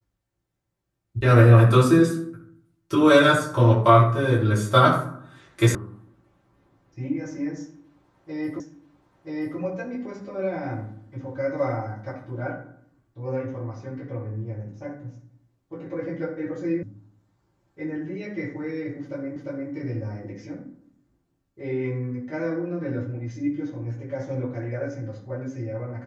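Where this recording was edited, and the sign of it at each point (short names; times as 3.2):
5.75 sound cut off
8.6 repeat of the last 0.98 s
16.83 sound cut off
19.36 repeat of the last 0.35 s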